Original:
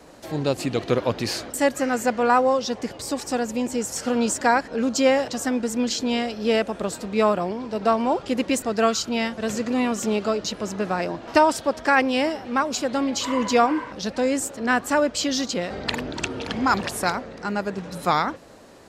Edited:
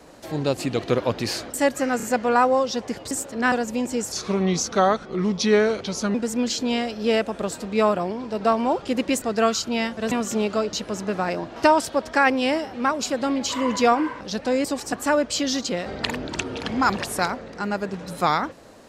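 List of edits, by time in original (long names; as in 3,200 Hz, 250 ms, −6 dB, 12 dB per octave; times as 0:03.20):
0:01.97: stutter 0.03 s, 3 plays
0:03.05–0:03.33: swap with 0:14.36–0:14.77
0:03.93–0:05.55: play speed 80%
0:09.52–0:09.83: remove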